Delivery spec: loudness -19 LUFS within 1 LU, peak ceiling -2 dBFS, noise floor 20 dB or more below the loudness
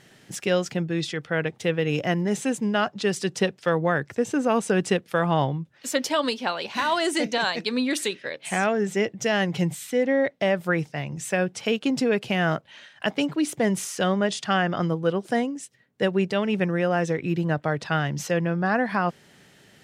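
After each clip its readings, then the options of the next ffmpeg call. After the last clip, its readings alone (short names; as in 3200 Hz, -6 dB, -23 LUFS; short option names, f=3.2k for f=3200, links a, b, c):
loudness -25.0 LUFS; peak -9.0 dBFS; loudness target -19.0 LUFS
-> -af "volume=6dB"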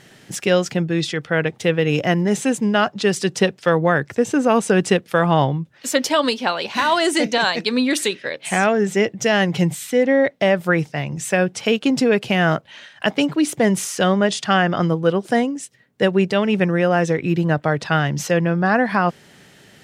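loudness -19.0 LUFS; peak -3.0 dBFS; noise floor -50 dBFS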